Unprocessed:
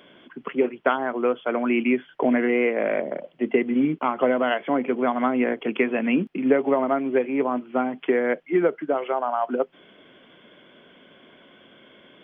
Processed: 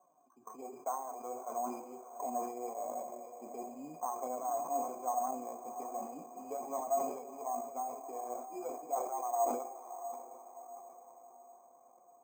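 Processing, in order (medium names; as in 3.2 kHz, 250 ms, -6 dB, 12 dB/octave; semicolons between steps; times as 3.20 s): bit-reversed sample order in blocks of 16 samples; on a send at -9 dB: peaking EQ 350 Hz +11 dB 0.35 oct + reverberation RT60 1.0 s, pre-delay 3 ms; on the sum: flange 1 Hz, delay 5.3 ms, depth 4 ms, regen +31%; cascade formant filter a; echo that smears into a reverb 665 ms, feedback 50%, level -10 dB; careless resampling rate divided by 6×, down none, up hold; decay stretcher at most 68 dB/s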